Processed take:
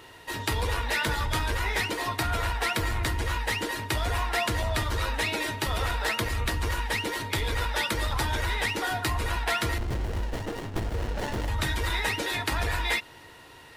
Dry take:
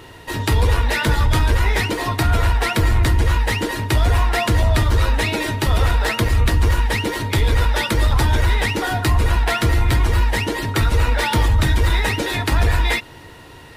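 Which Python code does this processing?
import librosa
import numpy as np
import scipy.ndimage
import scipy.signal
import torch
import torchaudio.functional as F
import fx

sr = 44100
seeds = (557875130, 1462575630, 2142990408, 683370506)

y = fx.low_shelf(x, sr, hz=370.0, db=-9.0)
y = fx.running_max(y, sr, window=33, at=(9.78, 11.48))
y = F.gain(torch.from_numpy(y), -5.5).numpy()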